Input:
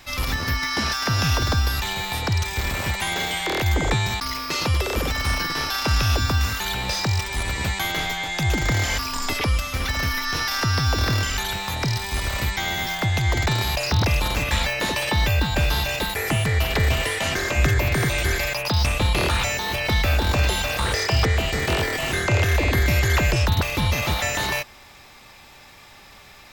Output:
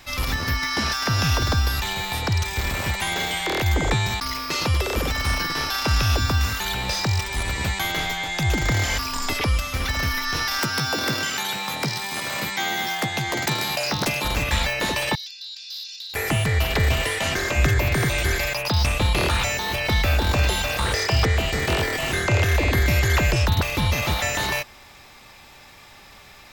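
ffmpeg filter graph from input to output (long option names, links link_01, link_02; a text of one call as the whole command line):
ffmpeg -i in.wav -filter_complex "[0:a]asettb=1/sr,asplit=3[link_01][link_02][link_03];[link_01]atrim=end=10.594[link_04];[link_02]atrim=start=10.59:end=14.25,asetpts=PTS-STARTPTS,afade=type=in:duration=0.004:curve=qsin,afade=type=out:start_time=3.656:duration=0.004:curve=qsin,highpass=frequency=150:width=0.5412,highpass=frequency=150:width=1.3066,aeval=exprs='(mod(4.73*val(0)+1,2)-1)/4.73':channel_layout=same,asplit=2[link_05][link_06];[link_06]adelay=14,volume=-8dB[link_07];[link_05][link_07]amix=inputs=2:normalize=0,atrim=end_sample=161406[link_08];[link_03]atrim=start=14.246[link_09];[link_04][link_08]acrossfade=duration=0.004:curve1=hsin:curve2=qsin[link_10];[link_10][link_09]acrossfade=duration=0.004:curve1=qsin:curve2=hsin,asettb=1/sr,asplit=3[link_11][link_12][link_13];[link_11]atrim=end=15.154[link_14];[link_12]atrim=start=15.15:end=16.14,asetpts=PTS-STARTPTS,afade=type=in:duration=0.004:curve=qsin,afade=type=out:start_time=0.986:duration=0.004:curve=qsin,asuperpass=centerf=4700:order=4:qfactor=2.6,asoftclip=type=hard:threshold=-29dB[link_15];[link_13]atrim=start=16.136[link_16];[link_14][link_15]acrossfade=duration=0.004:curve1=hsin:curve2=qsin[link_17];[link_17][link_16]acrossfade=duration=0.004:curve1=qsin:curve2=hsin" out.wav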